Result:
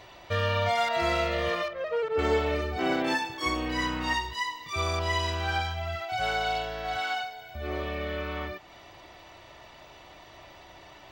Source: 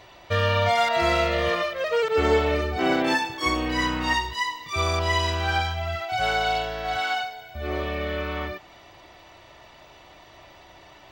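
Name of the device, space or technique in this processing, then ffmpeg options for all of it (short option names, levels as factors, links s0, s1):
parallel compression: -filter_complex "[0:a]asplit=2[s0][s1];[s1]acompressor=threshold=0.00891:ratio=6,volume=0.75[s2];[s0][s2]amix=inputs=2:normalize=0,asettb=1/sr,asplit=3[s3][s4][s5];[s3]atrim=end=1.684[s6];[s4]atrim=start=1.68:end=2.19,asetpts=PTS-STARTPTS,afade=t=in:d=0.004:c=qsin,afade=t=out:st=0.506:d=0.004:c=qsin,lowpass=f=1300:p=1[s7];[s5]atrim=start=2.186[s8];[s6][s7]acrossfade=d=0.004:c1=hsin:c2=qsin[s9];[s9][s8]acrossfade=d=0.004:c1=qsin:c2=hsin,volume=0.531"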